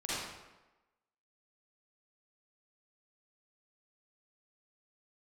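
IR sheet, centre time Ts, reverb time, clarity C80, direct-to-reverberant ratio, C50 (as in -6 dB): 0.107 s, 1.1 s, -1.0 dB, -10.5 dB, -6.5 dB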